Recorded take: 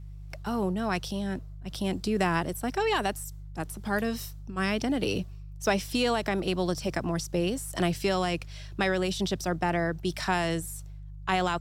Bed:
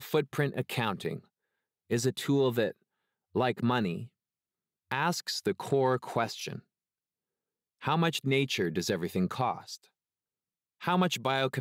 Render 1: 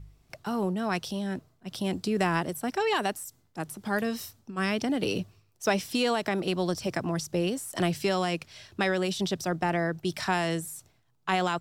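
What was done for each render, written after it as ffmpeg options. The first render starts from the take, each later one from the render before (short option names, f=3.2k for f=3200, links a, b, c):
-af "bandreject=f=50:t=h:w=4,bandreject=f=100:t=h:w=4,bandreject=f=150:t=h:w=4"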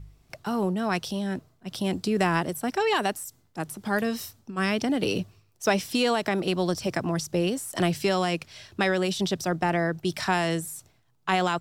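-af "volume=2.5dB"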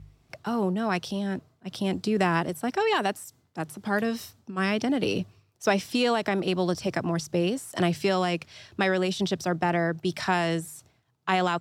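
-af "highpass=62,highshelf=f=7.5k:g=-8"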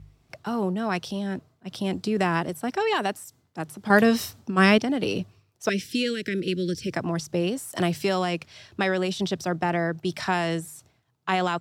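-filter_complex "[0:a]asettb=1/sr,asplit=3[a][b][c];[a]atrim=end=5.694[d];[b]atrim=start=5.69:end=6.93,asetpts=PTS-STARTPTS,afade=t=in:d=0.004:c=qsin,afade=t=out:st=1.236:d=0.004:c=qsin,asuperstop=centerf=870:order=8:qfactor=0.79[e];[c]atrim=start=6.926[f];[d][e]acrossfade=d=0.004:c1=hsin:c2=qsin[g];[g][f]acrossfade=d=0.004:c1=qsin:c2=hsin,asettb=1/sr,asplit=3[h][i][j];[h]atrim=end=7.584[k];[i]atrim=start=7.58:end=8.19,asetpts=PTS-STARTPTS,afade=t=in:d=0.004:c=qsin,afade=t=out:st=0.606:d=0.004:c=qsin,highshelf=f=12k:g=10[l];[j]atrim=start=8.186[m];[k][l]acrossfade=d=0.004:c1=hsin:c2=qsin[n];[n][m]acrossfade=d=0.004:c1=qsin:c2=hsin,asplit=3[o][p][q];[o]atrim=end=3.902[r];[p]atrim=start=3.898:end=4.782,asetpts=PTS-STARTPTS,volume=8.5dB[s];[q]atrim=start=4.778[t];[r][s]acrossfade=d=0.004:c1=hsin:c2=hsin[u];[u][t]acrossfade=d=0.004:c1=hsin:c2=hsin"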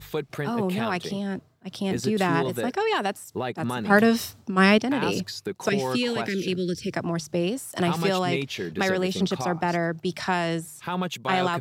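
-filter_complex "[1:a]volume=-1.5dB[a];[0:a][a]amix=inputs=2:normalize=0"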